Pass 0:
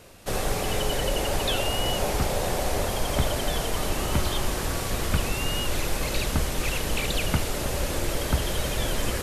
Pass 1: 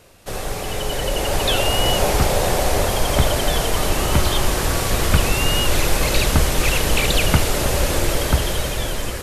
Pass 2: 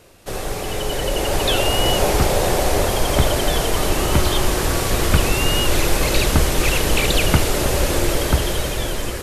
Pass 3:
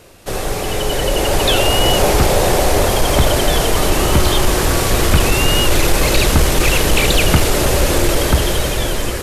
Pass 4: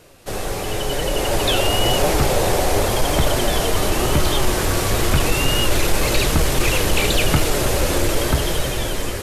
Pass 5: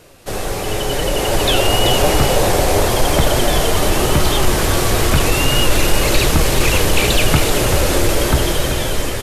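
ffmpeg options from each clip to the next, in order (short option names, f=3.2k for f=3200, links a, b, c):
-af "equalizer=f=230:t=o:w=0.77:g=-2.5,dynaudnorm=f=380:g=7:m=11.5dB"
-af "equalizer=f=350:w=2.3:g=4"
-af "acontrast=59,volume=-1dB"
-af "flanger=delay=6:depth=5.2:regen=66:speed=0.94:shape=triangular"
-af "aecho=1:1:384:0.376,volume=3dB"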